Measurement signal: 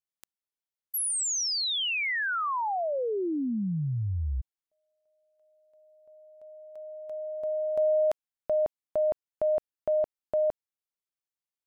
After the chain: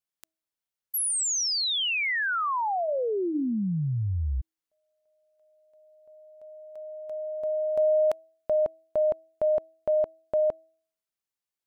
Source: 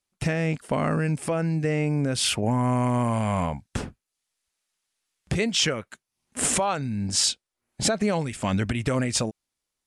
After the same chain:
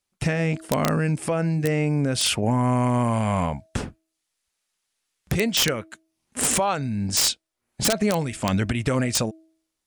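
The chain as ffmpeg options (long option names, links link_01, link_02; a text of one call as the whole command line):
ffmpeg -i in.wav -af "bandreject=frequency=321.8:width_type=h:width=4,bandreject=frequency=643.6:width_type=h:width=4,aeval=exprs='(mod(4.73*val(0)+1,2)-1)/4.73':channel_layout=same,volume=2dB" out.wav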